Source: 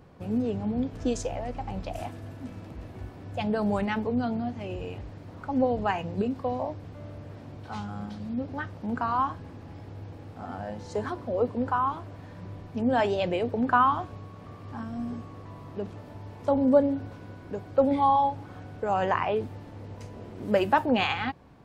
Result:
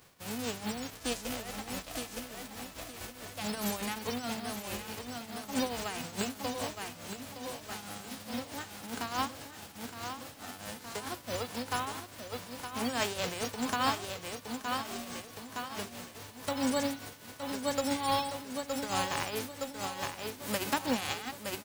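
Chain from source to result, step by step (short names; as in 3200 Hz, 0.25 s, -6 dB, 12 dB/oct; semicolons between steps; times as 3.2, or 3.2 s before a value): spectral whitening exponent 0.3; feedback echo 0.916 s, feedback 55%, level -6 dB; tremolo triangle 4.7 Hz, depth 65%; gain -5.5 dB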